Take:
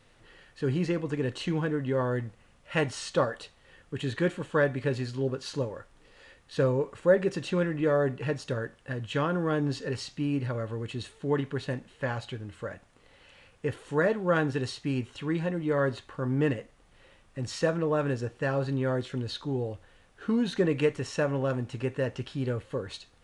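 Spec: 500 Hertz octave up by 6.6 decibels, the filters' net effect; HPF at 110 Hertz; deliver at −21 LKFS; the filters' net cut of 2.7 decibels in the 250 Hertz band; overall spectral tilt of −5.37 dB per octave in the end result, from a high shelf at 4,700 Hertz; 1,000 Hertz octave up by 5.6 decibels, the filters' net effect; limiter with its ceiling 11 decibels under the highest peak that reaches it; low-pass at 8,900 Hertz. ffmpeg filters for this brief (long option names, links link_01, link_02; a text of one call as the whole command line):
ffmpeg -i in.wav -af "highpass=110,lowpass=8900,equalizer=frequency=250:width_type=o:gain=-7,equalizer=frequency=500:width_type=o:gain=8,equalizer=frequency=1000:width_type=o:gain=5.5,highshelf=frequency=4700:gain=-3.5,volume=7dB,alimiter=limit=-8dB:level=0:latency=1" out.wav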